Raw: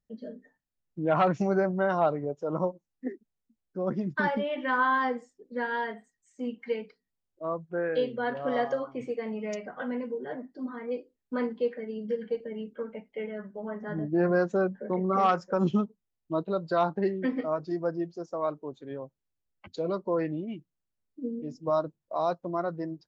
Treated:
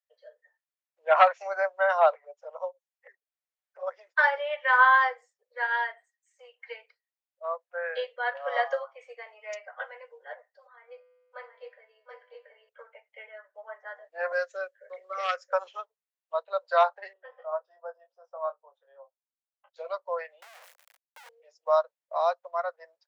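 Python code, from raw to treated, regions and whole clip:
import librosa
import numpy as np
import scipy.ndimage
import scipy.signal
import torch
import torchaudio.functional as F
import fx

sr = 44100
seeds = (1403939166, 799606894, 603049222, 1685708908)

y = fx.chain(x, sr, fx.env_flanger(rest_ms=7.1, full_db=-26.5),
    fx.band_squash(depth_pct=40), at=(2.13, 3.83))
y = fx.chain(y, sr, fx.dynamic_eq(hz=670.0, q=1.2, threshold_db=-42.0, ratio=4.0, max_db=4),
    fx.comb_fb(f0_hz=100.0, decay_s=1.6, harmonics='all', damping=0.0, mix_pct=60),
    fx.echo_single(ms=726, db=-4.5), at=(10.67, 12.69))
y = fx.chain(y, sr, fx.high_shelf(hz=4100.0, db=6.0),
    fx.fixed_phaser(hz=360.0, stages=4), at=(14.32, 15.53))
y = fx.chain(y, sr, fx.moving_average(points=20),
    fx.peak_eq(hz=240.0, db=-12.0, octaves=1.5),
    fx.doubler(ms=22.0, db=-6.0), at=(17.13, 19.76))
y = fx.chain(y, sr, fx.clip_1bit(),
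    fx.band_squash(depth_pct=70), at=(20.42, 21.29))
y = scipy.signal.sosfilt(scipy.signal.butter(12, 520.0, 'highpass', fs=sr, output='sos'), y)
y = fx.peak_eq(y, sr, hz=1900.0, db=6.0, octaves=1.1)
y = fx.upward_expand(y, sr, threshold_db=-43.0, expansion=1.5)
y = F.gain(torch.from_numpy(y), 5.5).numpy()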